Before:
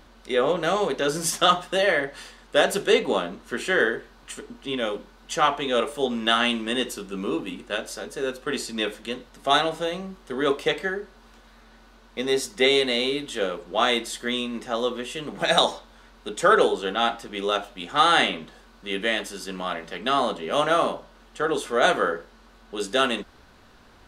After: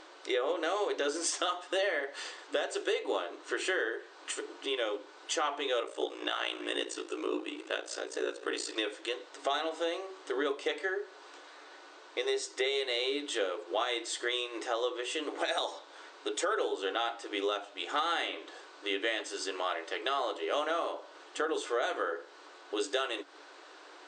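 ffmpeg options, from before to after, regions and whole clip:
-filter_complex "[0:a]asettb=1/sr,asplit=3[s0][s1][s2];[s0]atrim=end=5.824[s3];[s1]atrim=start=5.82:end=8.76,asetpts=PTS-STARTPTS,afade=t=in:d=0.004:c=qsin,afade=t=out:st=2.936:d=0.004:c=qsin,aeval=exprs='val(0)*sin(2*PI*29*n/s)':c=same,aecho=1:1:193:0.0891,atrim=end_sample=129654[s4];[s2]atrim=start=8.756[s5];[s3][s4]acrossfade=d=0.004:c1=hsin:c2=qsin[s6];[s6][s5]acrossfade=d=0.004:c1=qsin:c2=hsin,afftfilt=real='re*between(b*sr/4096,290,8800)':imag='im*between(b*sr/4096,290,8800)':win_size=4096:overlap=0.75,alimiter=limit=0.178:level=0:latency=1:release=394,acompressor=threshold=0.0126:ratio=2,volume=1.41"

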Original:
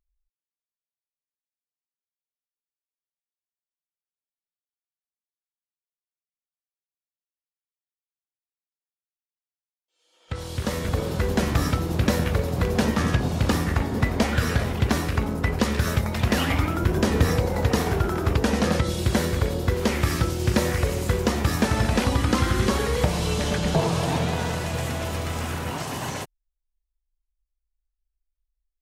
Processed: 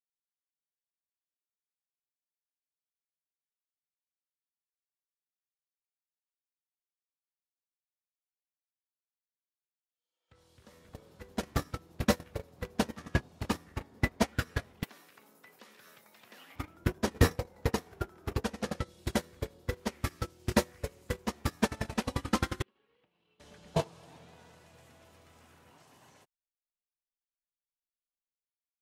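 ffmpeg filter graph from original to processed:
-filter_complex "[0:a]asettb=1/sr,asplit=3[s0][s1][s2];[s0]atrim=end=14.834[s3];[s1]atrim=start=14.83:end=16.56,asetpts=PTS-STARTPTS,afade=t=in:d=0.004:c=qsin,afade=t=out:st=1.726:d=0.004:c=qsin,highpass=f=130:w=0.5412,highpass=f=130:w=1.3066,acrossover=split=3900[s4][s5];[s5]acompressor=threshold=0.00355:ratio=4:attack=1:release=60[s6];[s4][s6]amix=inputs=2:normalize=0,aemphasis=mode=production:type=riaa[s7];[s2]atrim=start=16.556[s8];[s3][s7]acrossfade=d=0.004:c1=hsin:c2=qsin[s9];[s9][s8]acrossfade=d=0.004:c1=qsin:c2=hsin,asettb=1/sr,asplit=3[s10][s11][s12];[s10]atrim=end=22.624[s13];[s11]atrim=start=22.62:end=23.4,asetpts=PTS-STARTPTS,afade=t=in:d=0.004:c=qsin,afade=t=out:st=0.776:d=0.004:c=qsin,agate=range=0.0224:threshold=0.224:ratio=3:release=100:detection=peak,highpass=160,equalizer=f=340:t=q:w=4:g=4,equalizer=f=610:t=q:w=4:g=-4,equalizer=f=2800:t=q:w=4:g=9,lowpass=f=3800:w=0.5412,lowpass=f=3800:w=1.3066,acompressor=threshold=0.0126:ratio=16:attack=3.2:release=140:knee=1:detection=peak[s14];[s12]atrim=start=23.396[s15];[s13][s14]acrossfade=d=0.004:c1=hsin:c2=qsin[s16];[s16][s15]acrossfade=d=0.004:c1=qsin:c2=hsin,agate=range=0.0224:threshold=0.141:ratio=16:detection=peak,lowshelf=f=140:g=-8.5,dynaudnorm=f=180:g=9:m=2.99,volume=0.562"

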